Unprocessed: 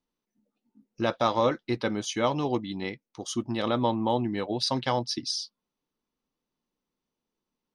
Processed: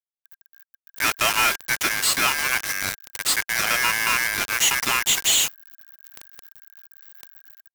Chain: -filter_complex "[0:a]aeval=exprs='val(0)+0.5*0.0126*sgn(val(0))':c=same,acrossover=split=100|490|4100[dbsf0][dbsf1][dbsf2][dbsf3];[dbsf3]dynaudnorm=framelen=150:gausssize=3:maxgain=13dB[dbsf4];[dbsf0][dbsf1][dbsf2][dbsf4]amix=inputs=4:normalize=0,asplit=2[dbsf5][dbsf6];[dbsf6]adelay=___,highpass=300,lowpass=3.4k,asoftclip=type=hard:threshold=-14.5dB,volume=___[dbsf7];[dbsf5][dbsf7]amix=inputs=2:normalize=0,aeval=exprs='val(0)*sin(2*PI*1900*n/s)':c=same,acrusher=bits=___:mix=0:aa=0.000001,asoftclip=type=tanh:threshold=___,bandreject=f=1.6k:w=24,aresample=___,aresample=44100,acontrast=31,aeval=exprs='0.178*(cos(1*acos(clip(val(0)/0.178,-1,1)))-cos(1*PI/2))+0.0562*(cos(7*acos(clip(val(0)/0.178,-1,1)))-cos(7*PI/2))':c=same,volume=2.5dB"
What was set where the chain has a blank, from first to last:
100, -26dB, 4, -23.5dB, 32000